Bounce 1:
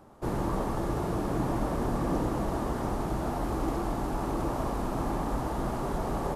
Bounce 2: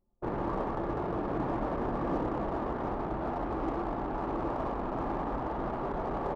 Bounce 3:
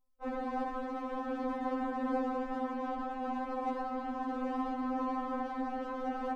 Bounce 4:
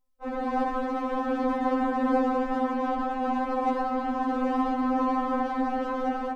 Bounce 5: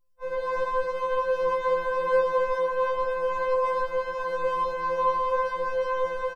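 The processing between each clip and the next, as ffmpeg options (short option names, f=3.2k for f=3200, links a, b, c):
-af "anlmdn=2.51,bass=f=250:g=-7,treble=f=4k:g=-7"
-filter_complex "[0:a]acrossover=split=250|530|1800[a][b][c][d];[b]aeval=exprs='sgn(val(0))*max(abs(val(0))-0.00158,0)':c=same[e];[a][e][c][d]amix=inputs=4:normalize=0,afftfilt=real='re*3.46*eq(mod(b,12),0)':imag='im*3.46*eq(mod(b,12),0)':win_size=2048:overlap=0.75,volume=1.5dB"
-af "dynaudnorm=f=150:g=5:m=7dB,volume=2dB"
-af "aecho=1:1:854:0.299,afftfilt=real='re*2.83*eq(mod(b,8),0)':imag='im*2.83*eq(mod(b,8),0)':win_size=2048:overlap=0.75"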